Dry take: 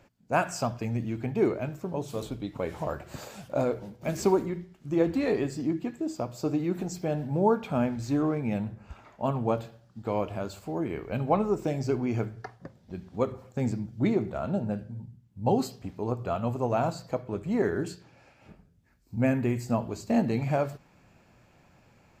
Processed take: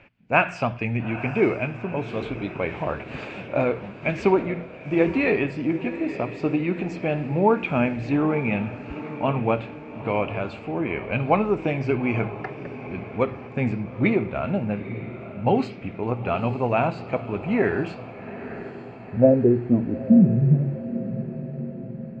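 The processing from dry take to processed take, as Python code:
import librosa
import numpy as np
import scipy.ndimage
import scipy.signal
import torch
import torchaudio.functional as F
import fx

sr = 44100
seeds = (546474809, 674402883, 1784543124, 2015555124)

y = fx.filter_sweep_lowpass(x, sr, from_hz=2500.0, to_hz=170.0, start_s=18.02, end_s=20.29, q=4.4)
y = fx.echo_diffused(y, sr, ms=880, feedback_pct=56, wet_db=-13)
y = y * librosa.db_to_amplitude(4.0)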